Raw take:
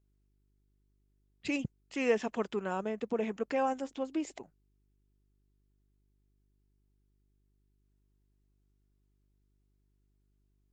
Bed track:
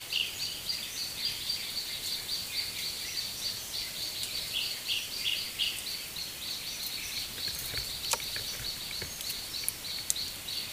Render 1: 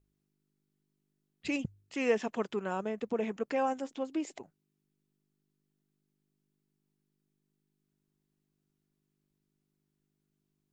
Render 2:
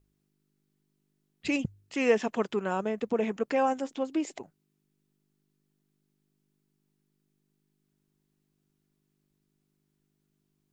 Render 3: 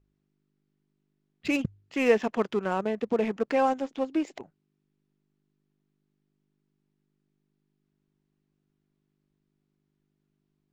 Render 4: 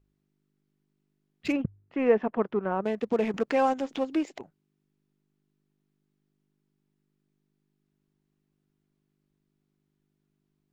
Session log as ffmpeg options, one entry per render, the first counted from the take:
-af "bandreject=f=50:t=h:w=4,bandreject=f=100:t=h:w=4"
-af "volume=4.5dB"
-filter_complex "[0:a]asplit=2[a][b];[b]aeval=exprs='val(0)*gte(abs(val(0)),0.0316)':c=same,volume=-11dB[c];[a][c]amix=inputs=2:normalize=0,adynamicsmooth=sensitivity=5.5:basefreq=4.2k"
-filter_complex "[0:a]asplit=3[a][b][c];[a]afade=t=out:st=1.51:d=0.02[d];[b]lowpass=1.5k,afade=t=in:st=1.51:d=0.02,afade=t=out:st=2.83:d=0.02[e];[c]afade=t=in:st=2.83:d=0.02[f];[d][e][f]amix=inputs=3:normalize=0,asettb=1/sr,asplit=3[g][h][i];[g]atrim=end=3.344[j];[h]atrim=start=3.34:end=4.25,asetpts=PTS-STARTPTS,afade=t=in:d=0.004:c=qsin,afade=t=out:st=0.906:d=0.004:c=qsin,acompressor=mode=upward:threshold=-26dB:ratio=2.5:attack=3.2:release=140:knee=2.83:detection=peak[k];[i]atrim=start=4.246[l];[j][k]acrossfade=d=0.004:c1=hsin:c2=qsin[m];[m][l]acrossfade=d=0.004:c1=qsin:c2=hsin"

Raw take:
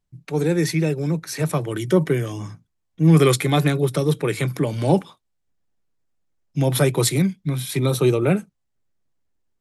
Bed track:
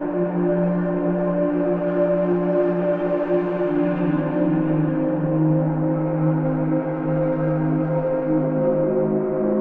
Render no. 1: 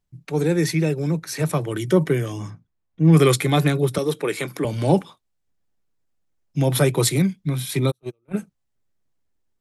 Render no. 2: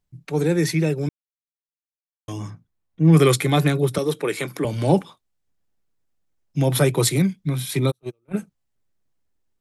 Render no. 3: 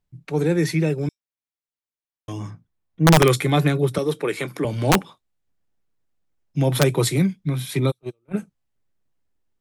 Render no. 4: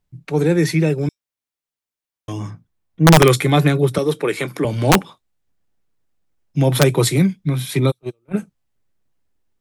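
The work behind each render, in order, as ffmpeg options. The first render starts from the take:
-filter_complex "[0:a]asplit=3[a][b][c];[a]afade=t=out:st=2.49:d=0.02[d];[b]aemphasis=mode=reproduction:type=75kf,afade=t=in:st=2.49:d=0.02,afade=t=out:st=3.12:d=0.02[e];[c]afade=t=in:st=3.12:d=0.02[f];[d][e][f]amix=inputs=3:normalize=0,asettb=1/sr,asplit=3[g][h][i];[g]atrim=end=3.984[j];[h]atrim=start=3.98:end=4.65,asetpts=PTS-STARTPTS,afade=t=in:d=0.004:c=qsin,afade=t=out:st=0.666:d=0.004:c=qsin,highpass=260[k];[i]atrim=start=4.646[l];[j][k]acrossfade=d=0.004:c1=hsin:c2=qsin[m];[m][l]acrossfade=d=0.004:c1=qsin:c2=hsin,asplit=3[n][o][p];[n]afade=t=out:st=7.9:d=0.02[q];[o]agate=range=-49dB:threshold=-13dB:ratio=16:release=100:detection=peak,afade=t=in:st=7.9:d=0.02,afade=t=out:st=8.33:d=0.02[r];[p]afade=t=in:st=8.33:d=0.02[s];[q][r][s]amix=inputs=3:normalize=0"
-filter_complex "[0:a]asplit=3[a][b][c];[a]atrim=end=1.09,asetpts=PTS-STARTPTS,afade=t=out:st=1.086:d=0.004:c=hsin[d];[b]atrim=start=1.09:end=2.28,asetpts=PTS-STARTPTS,volume=0[e];[c]atrim=start=2.28,asetpts=PTS-STARTPTS,afade=t=in:d=0.004:c=hsin[f];[d][e][f]concat=n=3:v=0:a=1"
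-filter_complex "[0:a]acrossover=split=3900[a][b];[a]aeval=exprs='(mod(2.11*val(0)+1,2)-1)/2.11':c=same[c];[b]flanger=delay=8.4:depth=8.8:regen=-54:speed=0.51:shape=triangular[d];[c][d]amix=inputs=2:normalize=0"
-af "volume=4dB"

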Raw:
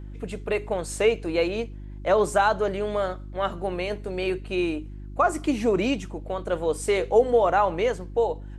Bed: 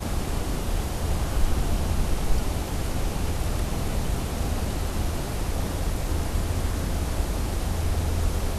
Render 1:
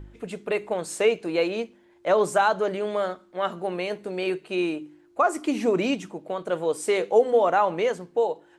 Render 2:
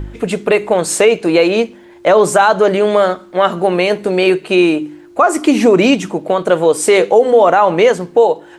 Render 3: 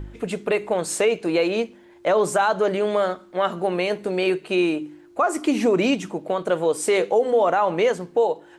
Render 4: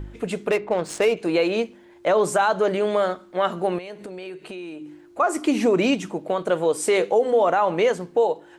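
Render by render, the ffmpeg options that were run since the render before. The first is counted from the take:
-af "bandreject=f=50:t=h:w=4,bandreject=f=100:t=h:w=4,bandreject=f=150:t=h:w=4,bandreject=f=200:t=h:w=4,bandreject=f=250:t=h:w=4,bandreject=f=300:t=h:w=4"
-filter_complex "[0:a]asplit=2[a][b];[b]acompressor=threshold=-30dB:ratio=6,volume=-1dB[c];[a][c]amix=inputs=2:normalize=0,alimiter=level_in=12dB:limit=-1dB:release=50:level=0:latency=1"
-af "volume=-9.5dB"
-filter_complex "[0:a]asettb=1/sr,asplit=3[a][b][c];[a]atrim=end=0.504[d];[b]atrim=start=0.5:end=1.17,asetpts=PTS-STARTPTS,afade=t=in:d=0.004:c=qsin,afade=t=out:st=0.666:d=0.004:c=qsin,adynamicsmooth=sensitivity=4.5:basefreq=2.1k[e];[c]atrim=start=1.166[f];[d][e]acrossfade=d=0.004:c1=hsin:c2=qsin[g];[g][f]acrossfade=d=0.004:c1=qsin:c2=hsin,asettb=1/sr,asplit=3[h][i][j];[h]atrim=end=3.784[k];[i]atrim=start=3.78:end=5.2,asetpts=PTS-STARTPTS,afade=t=in:d=0.004:c=qsin,afade=t=out:st=1.416:d=0.004:c=qsin,acompressor=threshold=-33dB:ratio=6:attack=3.2:release=140:knee=1:detection=peak[l];[j]atrim=start=5.196[m];[k][l]acrossfade=d=0.004:c1=hsin:c2=qsin[n];[n][m]acrossfade=d=0.004:c1=qsin:c2=hsin"

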